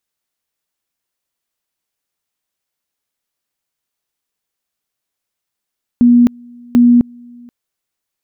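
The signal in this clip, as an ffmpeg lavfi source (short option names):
-f lavfi -i "aevalsrc='pow(10,(-4.5-29.5*gte(mod(t,0.74),0.26))/20)*sin(2*PI*241*t)':d=1.48:s=44100"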